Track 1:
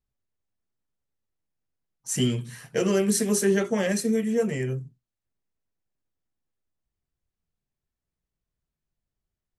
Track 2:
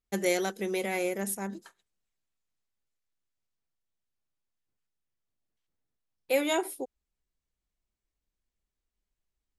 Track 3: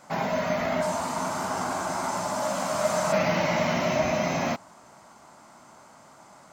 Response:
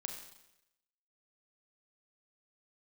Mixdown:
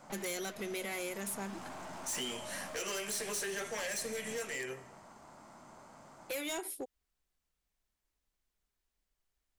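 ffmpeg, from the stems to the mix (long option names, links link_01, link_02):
-filter_complex "[0:a]highpass=700,volume=0.5dB,asplit=2[link_01][link_02];[link_02]volume=-8dB[link_03];[1:a]volume=-0.5dB[link_04];[2:a]tiltshelf=frequency=970:gain=3,acompressor=threshold=-33dB:ratio=6,aeval=exprs='(tanh(112*val(0)+0.45)-tanh(0.45))/112':channel_layout=same,volume=-2.5dB[link_05];[3:a]atrim=start_sample=2205[link_06];[link_03][link_06]afir=irnorm=-1:irlink=0[link_07];[link_01][link_04][link_05][link_07]amix=inputs=4:normalize=0,acrossover=split=1600|4600[link_08][link_09][link_10];[link_08]acompressor=threshold=-38dB:ratio=4[link_11];[link_09]acompressor=threshold=-39dB:ratio=4[link_12];[link_10]acompressor=threshold=-36dB:ratio=4[link_13];[link_11][link_12][link_13]amix=inputs=3:normalize=0,asoftclip=type=hard:threshold=-34dB"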